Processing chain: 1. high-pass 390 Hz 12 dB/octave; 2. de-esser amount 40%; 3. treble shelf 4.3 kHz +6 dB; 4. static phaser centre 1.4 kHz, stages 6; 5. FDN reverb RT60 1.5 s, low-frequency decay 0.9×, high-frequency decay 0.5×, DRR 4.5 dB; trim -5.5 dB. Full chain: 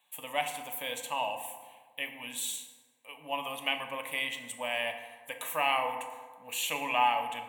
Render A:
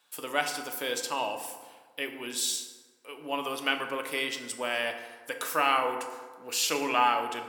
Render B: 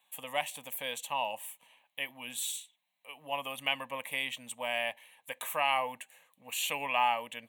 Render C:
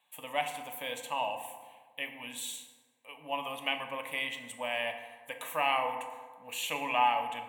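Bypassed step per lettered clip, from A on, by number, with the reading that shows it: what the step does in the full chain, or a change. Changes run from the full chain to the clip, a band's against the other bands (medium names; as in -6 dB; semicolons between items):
4, loudness change +3.0 LU; 5, 250 Hz band -2.5 dB; 3, 8 kHz band -4.5 dB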